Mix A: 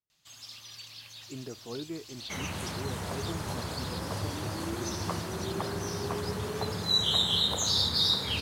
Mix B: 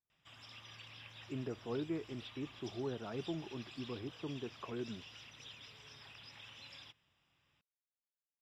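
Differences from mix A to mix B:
second sound: muted; master: add polynomial smoothing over 25 samples

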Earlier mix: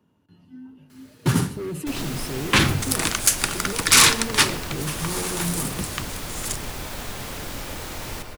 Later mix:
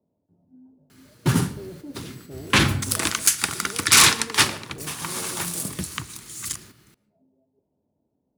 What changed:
speech: add ladder low-pass 720 Hz, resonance 60%; second sound: muted

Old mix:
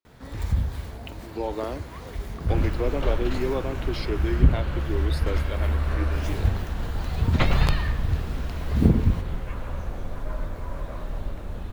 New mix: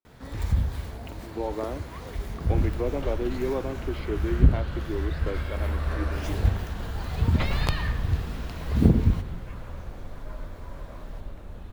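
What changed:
speech: add air absorption 410 m; second sound -7.0 dB

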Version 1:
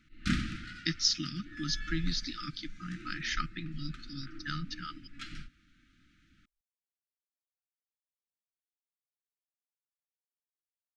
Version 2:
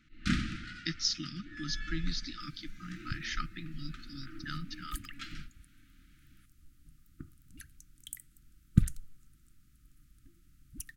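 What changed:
speech -3.5 dB; second sound: unmuted

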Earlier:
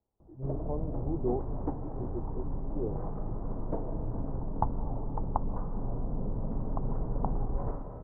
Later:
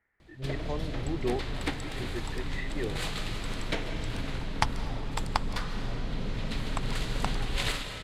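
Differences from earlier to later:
speech: add synth low-pass 1900 Hz, resonance Q 7.5; master: remove steep low-pass 980 Hz 36 dB/oct

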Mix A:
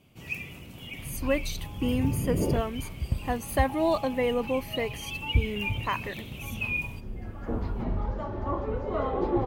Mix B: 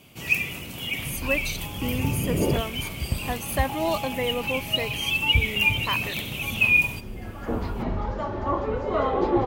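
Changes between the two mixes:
first sound +10.0 dB; second sound +6.5 dB; master: add tilt +1.5 dB/oct

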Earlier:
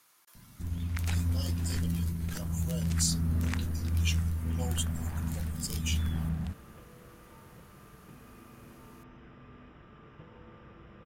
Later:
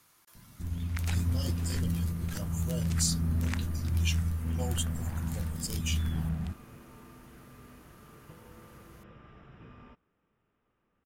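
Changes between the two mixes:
speech: remove HPF 480 Hz 6 dB/oct; second sound: entry -1.90 s

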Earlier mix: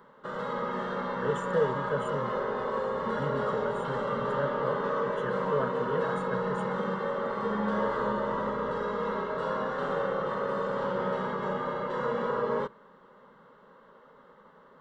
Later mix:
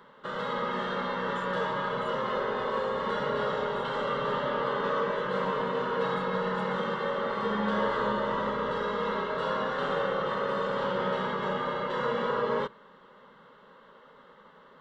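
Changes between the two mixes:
speech -12.0 dB; master: add bell 3200 Hz +9 dB 1.5 oct

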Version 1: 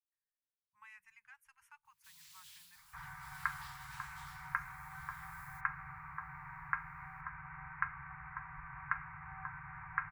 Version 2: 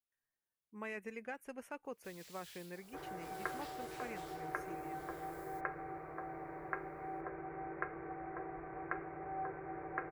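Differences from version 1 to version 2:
speech +9.0 dB; second sound -6.0 dB; master: remove Chebyshev band-stop 150–910 Hz, order 5

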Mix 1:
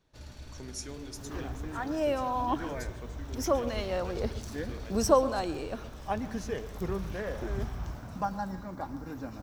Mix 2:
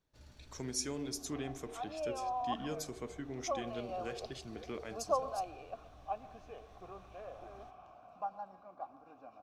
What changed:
speech +3.5 dB; first sound -11.0 dB; second sound: add vowel filter a

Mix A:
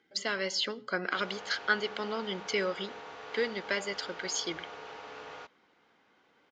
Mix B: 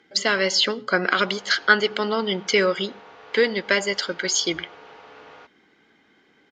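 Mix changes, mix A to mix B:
speech +11.5 dB; background: add air absorption 80 m

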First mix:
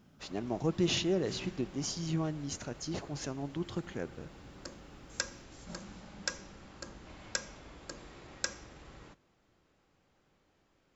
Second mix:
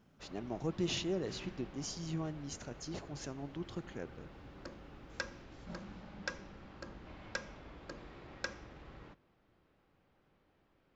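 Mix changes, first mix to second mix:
speech -5.5 dB; background: add air absorption 200 m

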